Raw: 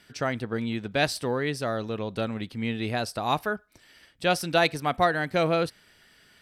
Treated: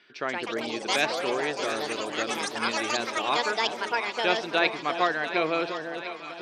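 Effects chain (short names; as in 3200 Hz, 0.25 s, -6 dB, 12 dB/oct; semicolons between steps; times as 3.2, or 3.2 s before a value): speaker cabinet 270–5100 Hz, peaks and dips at 370 Hz +9 dB, 1100 Hz +6 dB, 1600 Hz +4 dB, 2400 Hz +8 dB, 3600 Hz +5 dB; echoes that change speed 0.173 s, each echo +5 st, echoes 3; on a send: echo with dull and thin repeats by turns 0.351 s, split 870 Hz, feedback 77%, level -8 dB; on the sum: gain -5 dB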